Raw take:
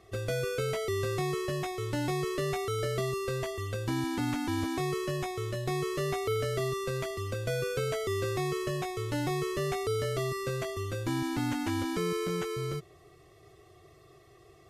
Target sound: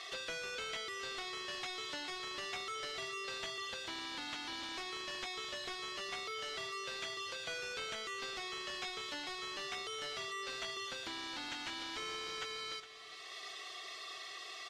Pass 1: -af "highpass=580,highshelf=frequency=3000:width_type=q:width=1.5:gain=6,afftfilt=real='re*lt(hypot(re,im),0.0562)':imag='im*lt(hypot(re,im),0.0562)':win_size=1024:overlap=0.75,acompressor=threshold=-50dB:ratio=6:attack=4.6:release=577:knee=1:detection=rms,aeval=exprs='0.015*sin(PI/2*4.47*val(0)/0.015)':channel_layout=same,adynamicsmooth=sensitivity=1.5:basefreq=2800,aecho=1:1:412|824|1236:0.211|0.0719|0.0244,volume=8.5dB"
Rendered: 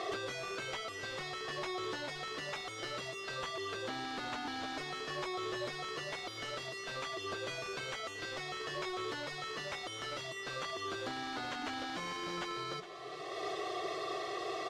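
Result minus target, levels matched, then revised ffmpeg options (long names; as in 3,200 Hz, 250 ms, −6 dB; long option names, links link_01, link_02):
500 Hz band +5.0 dB
-af "highpass=2100,highshelf=frequency=3000:width_type=q:width=1.5:gain=6,afftfilt=real='re*lt(hypot(re,im),0.0562)':imag='im*lt(hypot(re,im),0.0562)':win_size=1024:overlap=0.75,acompressor=threshold=-50dB:ratio=6:attack=4.6:release=577:knee=1:detection=rms,aeval=exprs='0.015*sin(PI/2*4.47*val(0)/0.015)':channel_layout=same,adynamicsmooth=sensitivity=1.5:basefreq=2800,aecho=1:1:412|824|1236:0.211|0.0719|0.0244,volume=8.5dB"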